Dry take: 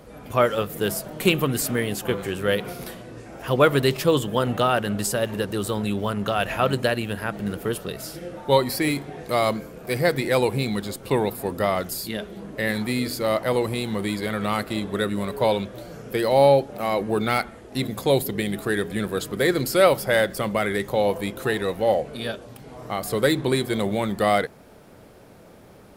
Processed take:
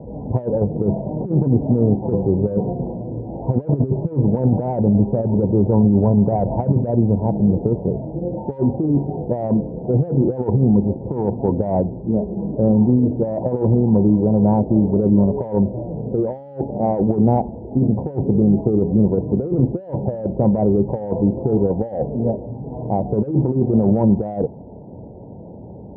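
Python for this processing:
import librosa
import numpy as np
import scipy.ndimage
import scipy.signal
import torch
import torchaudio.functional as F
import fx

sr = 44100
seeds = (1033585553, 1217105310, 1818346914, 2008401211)

p1 = scipy.signal.sosfilt(scipy.signal.cheby1(8, 1.0, 960.0, 'lowpass', fs=sr, output='sos'), x)
p2 = 10.0 ** (-18.5 / 20.0) * np.tanh(p1 / 10.0 ** (-18.5 / 20.0))
p3 = p1 + (p2 * librosa.db_to_amplitude(-8.0))
p4 = fx.over_compress(p3, sr, threshold_db=-23.0, ratio=-0.5)
p5 = scipy.signal.sosfilt(scipy.signal.butter(2, 53.0, 'highpass', fs=sr, output='sos'), p4)
y = fx.low_shelf(p5, sr, hz=380.0, db=11.0)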